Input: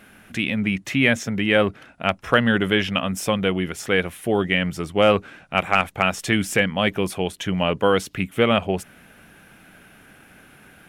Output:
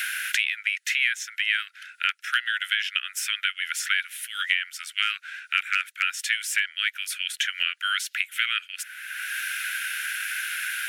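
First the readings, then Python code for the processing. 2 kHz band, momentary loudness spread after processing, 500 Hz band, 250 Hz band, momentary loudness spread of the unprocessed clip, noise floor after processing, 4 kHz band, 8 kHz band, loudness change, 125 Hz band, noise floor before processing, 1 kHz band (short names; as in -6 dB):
+0.5 dB, 5 LU, under -40 dB, under -40 dB, 7 LU, -57 dBFS, +1.5 dB, +3.5 dB, -4.5 dB, under -40 dB, -51 dBFS, -10.5 dB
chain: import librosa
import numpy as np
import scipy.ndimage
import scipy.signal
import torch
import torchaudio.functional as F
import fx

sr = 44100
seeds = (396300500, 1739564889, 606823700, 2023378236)

y = scipy.signal.sosfilt(scipy.signal.butter(16, 1400.0, 'highpass', fs=sr, output='sos'), x)
y = fx.band_squash(y, sr, depth_pct=100)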